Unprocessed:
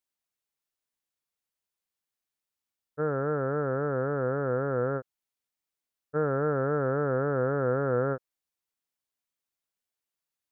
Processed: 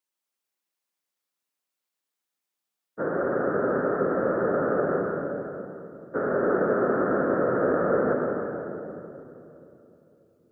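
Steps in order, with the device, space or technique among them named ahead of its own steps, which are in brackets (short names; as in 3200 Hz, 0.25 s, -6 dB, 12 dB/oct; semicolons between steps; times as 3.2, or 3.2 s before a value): whispering ghost (whisperiser; HPF 210 Hz 12 dB/oct; reverb RT60 3.0 s, pre-delay 73 ms, DRR 0 dB); gain +1 dB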